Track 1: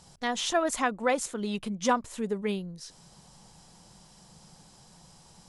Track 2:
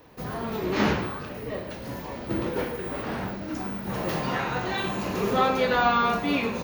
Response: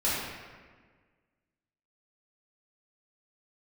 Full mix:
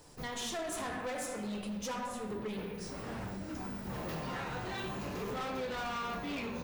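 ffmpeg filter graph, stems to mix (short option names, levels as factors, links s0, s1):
-filter_complex "[0:a]highshelf=f=8200:g=6.5,volume=0.562,asplit=3[s0][s1][s2];[s1]volume=0.316[s3];[1:a]lowshelf=f=67:g=11,volume=0.631[s4];[s2]apad=whole_len=292560[s5];[s4][s5]sidechaincompress=threshold=0.0126:ratio=8:attack=16:release=1210[s6];[2:a]atrim=start_sample=2205[s7];[s3][s7]afir=irnorm=-1:irlink=0[s8];[s0][s6][s8]amix=inputs=3:normalize=0,asoftclip=type=hard:threshold=0.0376,flanger=delay=6.8:depth=5.7:regen=74:speed=0.38:shape=sinusoidal,acompressor=threshold=0.0178:ratio=6"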